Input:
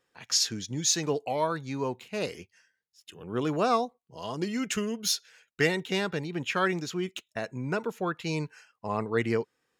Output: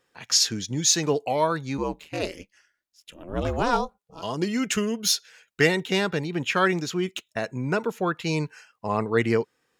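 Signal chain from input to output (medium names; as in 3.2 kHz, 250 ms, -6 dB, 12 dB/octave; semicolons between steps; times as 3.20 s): 1.77–4.21 s: ring modulator 63 Hz -> 340 Hz; trim +5 dB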